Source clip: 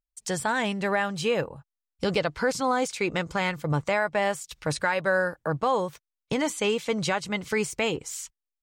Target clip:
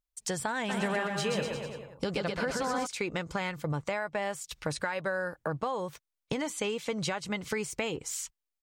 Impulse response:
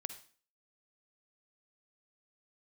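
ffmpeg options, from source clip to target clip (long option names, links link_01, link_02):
-filter_complex "[0:a]acompressor=threshold=-29dB:ratio=6,asplit=3[link_01][link_02][link_03];[link_01]afade=type=out:start_time=0.68:duration=0.02[link_04];[link_02]aecho=1:1:130|247|352.3|447.1|532.4:0.631|0.398|0.251|0.158|0.1,afade=type=in:start_time=0.68:duration=0.02,afade=type=out:start_time=2.85:duration=0.02[link_05];[link_03]afade=type=in:start_time=2.85:duration=0.02[link_06];[link_04][link_05][link_06]amix=inputs=3:normalize=0"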